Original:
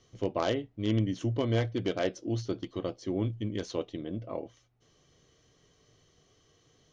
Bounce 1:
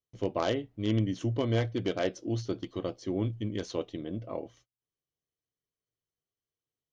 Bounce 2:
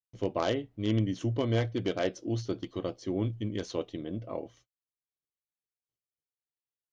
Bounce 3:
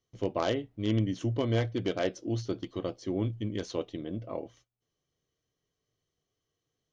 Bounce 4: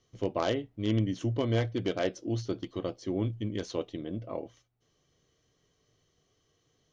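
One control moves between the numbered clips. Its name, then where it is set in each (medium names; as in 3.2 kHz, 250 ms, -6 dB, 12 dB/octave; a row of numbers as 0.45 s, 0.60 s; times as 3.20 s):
gate, range: -32 dB, -46 dB, -19 dB, -7 dB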